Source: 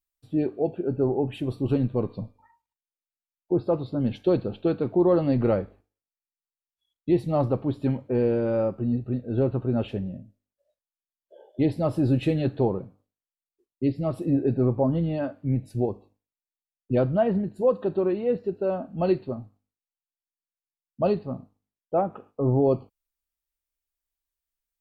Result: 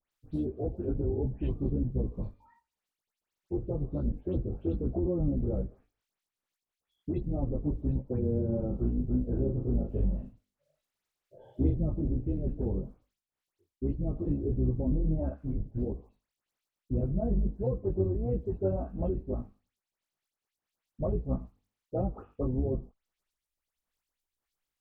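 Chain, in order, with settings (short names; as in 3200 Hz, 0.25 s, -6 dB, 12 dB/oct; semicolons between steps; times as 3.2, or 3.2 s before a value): octaver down 2 oct, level +1 dB; treble ducked by the level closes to 400 Hz, closed at -20 dBFS; limiter -19.5 dBFS, peak gain reduction 9.5 dB; crackle 37/s -60 dBFS; dispersion highs, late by 0.118 s, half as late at 2300 Hz; chorus voices 2, 1.5 Hz, delay 18 ms, depth 3 ms; 8.48–11.79 doubler 40 ms -4 dB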